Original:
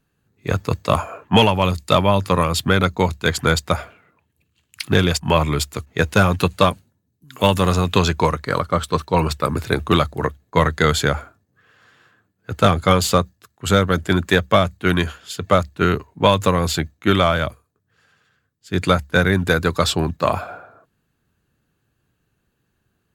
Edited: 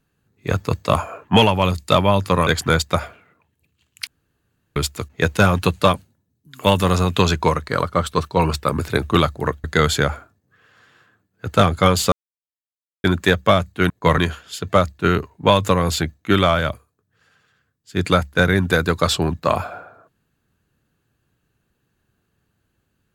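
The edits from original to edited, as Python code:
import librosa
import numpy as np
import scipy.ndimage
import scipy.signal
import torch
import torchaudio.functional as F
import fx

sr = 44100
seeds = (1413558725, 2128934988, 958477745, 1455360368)

y = fx.edit(x, sr, fx.cut(start_s=2.47, length_s=0.77),
    fx.room_tone_fill(start_s=4.84, length_s=0.69),
    fx.move(start_s=10.41, length_s=0.28, to_s=14.95),
    fx.silence(start_s=13.17, length_s=0.92), tone=tone)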